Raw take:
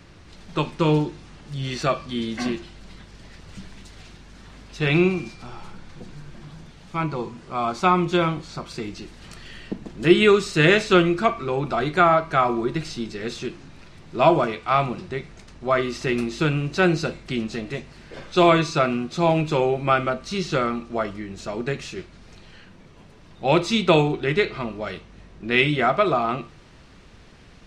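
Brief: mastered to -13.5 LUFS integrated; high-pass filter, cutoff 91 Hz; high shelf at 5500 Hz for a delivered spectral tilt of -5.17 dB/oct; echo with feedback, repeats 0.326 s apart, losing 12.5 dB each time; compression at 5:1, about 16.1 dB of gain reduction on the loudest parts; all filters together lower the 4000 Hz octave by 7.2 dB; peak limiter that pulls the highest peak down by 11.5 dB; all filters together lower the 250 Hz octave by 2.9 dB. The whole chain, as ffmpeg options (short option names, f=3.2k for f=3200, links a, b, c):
-af "highpass=91,equalizer=f=250:t=o:g=-4.5,equalizer=f=4k:t=o:g=-6.5,highshelf=f=5.5k:g=-8.5,acompressor=threshold=-30dB:ratio=5,alimiter=level_in=4.5dB:limit=-24dB:level=0:latency=1,volume=-4.5dB,aecho=1:1:326|652|978:0.237|0.0569|0.0137,volume=26dB"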